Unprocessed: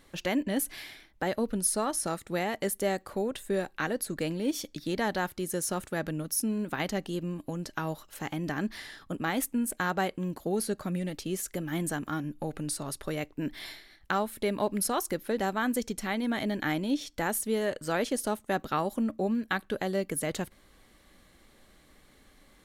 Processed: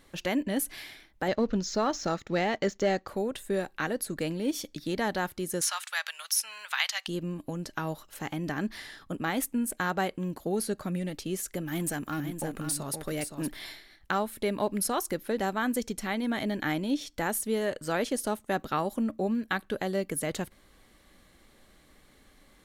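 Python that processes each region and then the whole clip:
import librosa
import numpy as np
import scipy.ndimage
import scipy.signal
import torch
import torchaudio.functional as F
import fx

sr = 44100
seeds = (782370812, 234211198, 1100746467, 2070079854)

y = fx.chain(x, sr, fx.steep_lowpass(hz=7000.0, slope=96),
    fx.leveller(passes=1), at=(1.28, 3.08))
y = fx.chain(y, sr, fx.cheby2_highpass(hz=350.0, order=4, stop_db=50),
    fx.peak_eq(hz=3600.0, db=11.0, octaves=2.2),
    fx.band_squash(depth_pct=40), at=(5.61, 7.08))
y = fx.chain(y, sr, fx.high_shelf(hz=8200.0, db=8.0),
    fx.clip_hard(threshold_db=-25.5),
    fx.echo_single(ms=518, db=-7.5), at=(11.66, 13.57))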